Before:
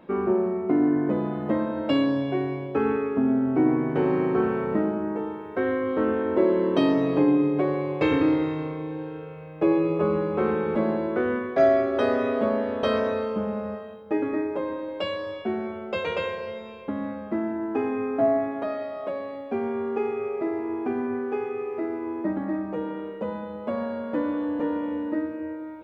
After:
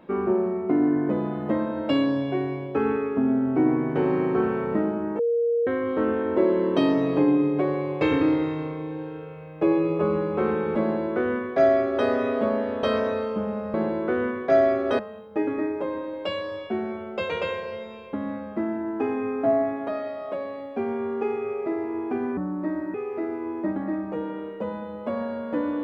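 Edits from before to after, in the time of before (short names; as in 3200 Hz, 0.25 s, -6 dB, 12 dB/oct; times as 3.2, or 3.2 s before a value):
5.19–5.67 bleep 469 Hz -19.5 dBFS
10.82–12.07 copy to 13.74
21.12–21.55 speed 75%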